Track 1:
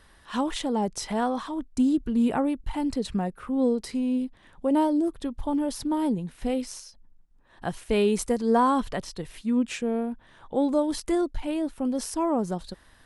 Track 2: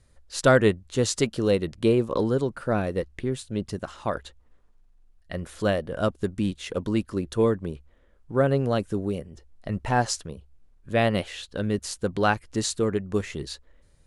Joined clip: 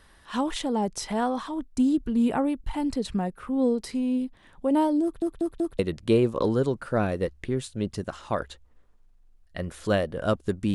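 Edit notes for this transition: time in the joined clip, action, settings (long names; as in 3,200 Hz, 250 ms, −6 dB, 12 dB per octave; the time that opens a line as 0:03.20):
track 1
0:05.03: stutter in place 0.19 s, 4 plays
0:05.79: continue with track 2 from 0:01.54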